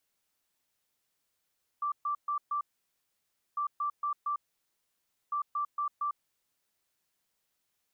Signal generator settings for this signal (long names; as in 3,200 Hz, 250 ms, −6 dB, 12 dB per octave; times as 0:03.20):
beeps in groups sine 1,170 Hz, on 0.10 s, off 0.13 s, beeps 4, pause 0.96 s, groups 3, −28.5 dBFS